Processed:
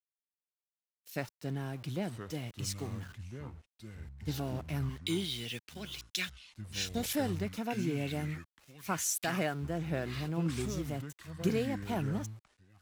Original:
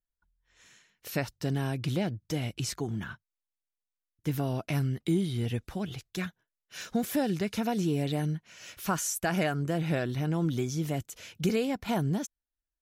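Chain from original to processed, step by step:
0:04.89–0:07.13: meter weighting curve D
centre clipping without the shift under −40 dBFS
delay with pitch and tempo change per echo 540 ms, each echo −6 semitones, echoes 2, each echo −6 dB
multiband upward and downward expander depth 70%
level −6 dB

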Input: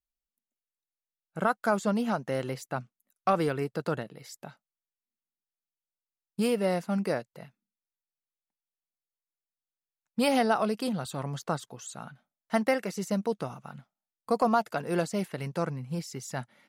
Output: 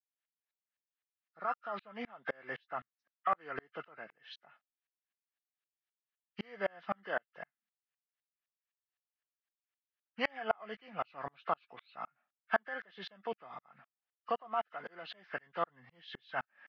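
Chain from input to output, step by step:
hearing-aid frequency compression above 1,200 Hz 1.5 to 1
loudspeaker in its box 150–2,900 Hz, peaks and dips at 700 Hz +6 dB, 1,200 Hz +6 dB, 1,700 Hz +9 dB
downward compressor 6 to 1, threshold −24 dBFS, peak gain reduction 9 dB
spectral tilt +4.5 dB per octave
tremolo with a ramp in dB swelling 3.9 Hz, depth 37 dB
level +2 dB

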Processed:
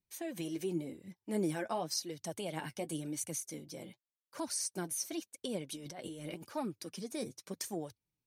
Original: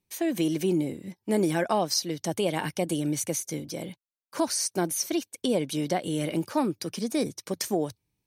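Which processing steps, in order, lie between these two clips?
dynamic equaliser 9,200 Hz, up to +5 dB, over −43 dBFS, Q 1.1
0:05.70–0:06.46: compressor whose output falls as the input rises −33 dBFS, ratio −1
flanger 0.9 Hz, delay 0.4 ms, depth 9 ms, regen +36%
level −7.5 dB

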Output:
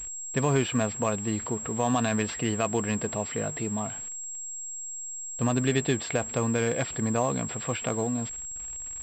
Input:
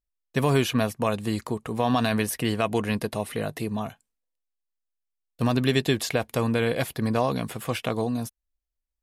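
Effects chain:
converter with a step at zero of −38 dBFS
switching amplifier with a slow clock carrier 7,600 Hz
level −3 dB

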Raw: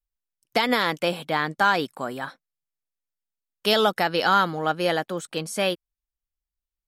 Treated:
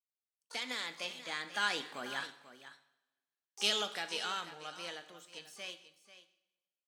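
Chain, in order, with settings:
source passing by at 0:02.58, 8 m/s, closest 1.8 metres
meter weighting curve D
on a send: single-tap delay 490 ms −14 dB
on the sum: coupled-rooms reverb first 0.63 s, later 1.6 s, DRR 8.5 dB
pitch-shifted copies added +12 semitones −11 dB
level −5 dB

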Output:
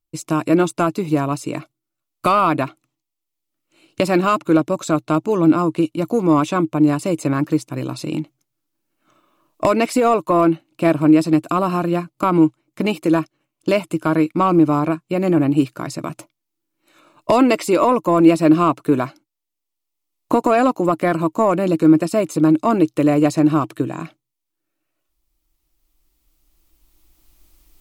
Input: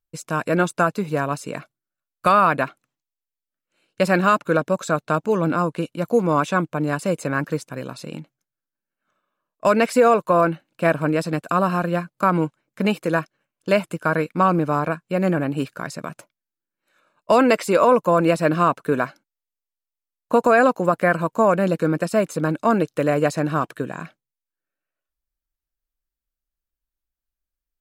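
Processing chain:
camcorder AGC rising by 8.2 dB per second
sine wavefolder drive 4 dB, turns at 1 dBFS
thirty-one-band graphic EQ 125 Hz +5 dB, 200 Hz −5 dB, 315 Hz +11 dB, 500 Hz −6 dB, 1,600 Hz −11 dB
level −5.5 dB

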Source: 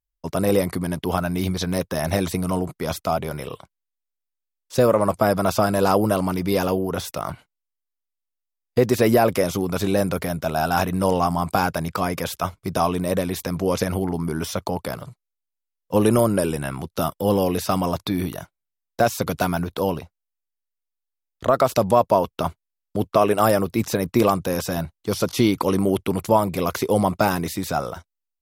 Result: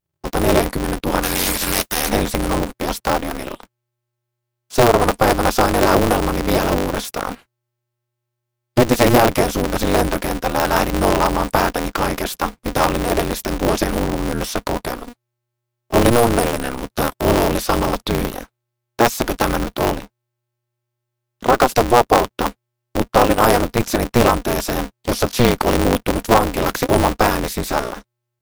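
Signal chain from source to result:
0:01.22–0:02.08: spectral envelope flattened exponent 0.3
ring modulator with a square carrier 120 Hz
level +4 dB

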